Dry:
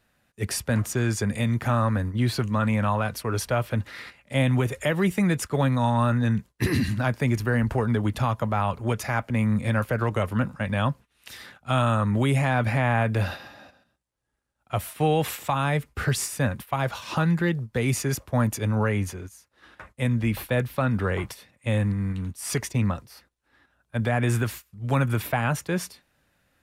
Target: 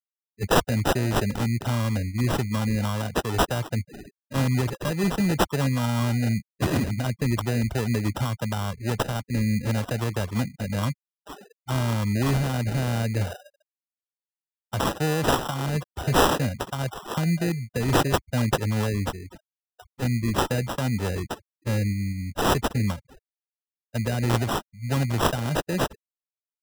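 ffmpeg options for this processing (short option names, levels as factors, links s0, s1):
-filter_complex "[0:a]aemphasis=mode=production:type=75fm,afftfilt=real='re*gte(hypot(re,im),0.0355)':imag='im*gte(hypot(re,im),0.0355)':win_size=1024:overlap=0.75,acrossover=split=480|3000[s0][s1][s2];[s1]acompressor=threshold=0.02:ratio=4[s3];[s0][s3][s2]amix=inputs=3:normalize=0,acrusher=samples=20:mix=1:aa=0.000001"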